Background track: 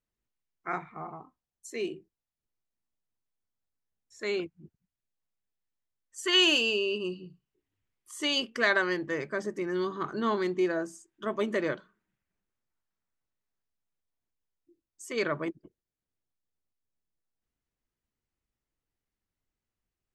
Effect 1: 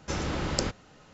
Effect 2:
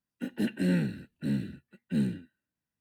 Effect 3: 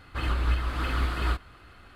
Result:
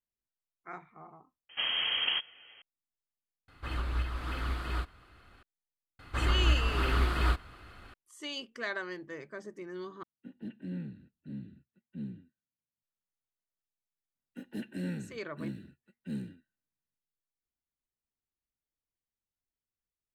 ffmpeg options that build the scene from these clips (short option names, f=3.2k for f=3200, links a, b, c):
-filter_complex "[3:a]asplit=2[a][b];[2:a]asplit=2[c][d];[0:a]volume=-11dB[e];[1:a]lowpass=f=2.8k:t=q:w=0.5098,lowpass=f=2.8k:t=q:w=0.6013,lowpass=f=2.8k:t=q:w=0.9,lowpass=f=2.8k:t=q:w=2.563,afreqshift=-3300[f];[c]firequalizer=gain_entry='entry(190,0);entry(460,-6);entry(1600,-9);entry(3600,-8);entry(5300,-18);entry(8400,-21)':delay=0.05:min_phase=1[g];[e]asplit=4[h][i][j][k];[h]atrim=end=1.494[l];[f]atrim=end=1.13,asetpts=PTS-STARTPTS,volume=-0.5dB[m];[i]atrim=start=2.616:end=3.484[n];[a]atrim=end=1.95,asetpts=PTS-STARTPTS,volume=-7dB[o];[j]atrim=start=5.426:end=10.034[p];[g]atrim=end=2.8,asetpts=PTS-STARTPTS,volume=-11.5dB[q];[k]atrim=start=12.826[r];[b]atrim=end=1.95,asetpts=PTS-STARTPTS,volume=-0.5dB,afade=t=in:d=0.004:c=hsin,afade=t=out:st=1.946:d=0.004:c=hsin,adelay=5990[s];[d]atrim=end=2.8,asetpts=PTS-STARTPTS,volume=-9.5dB,afade=t=in:d=0.004:c=hsin,afade=t=out:st=2.796:d=0.004:c=hsin,adelay=14150[t];[l][m]acrossfade=d=0.004:c1=hsin:c2=hsin[u];[u][n]acrossfade=d=0.004:c1=hsin:c2=hsin[v];[v][o]acrossfade=d=0.004:c1=hsin:c2=hsin[w];[w][p]acrossfade=d=0.004:c1=hsin:c2=hsin[x];[x][q]acrossfade=d=0.004:c1=hsin:c2=hsin[y];[y][r]acrossfade=d=0.004:c1=hsin:c2=hsin[z];[z][s][t]amix=inputs=3:normalize=0"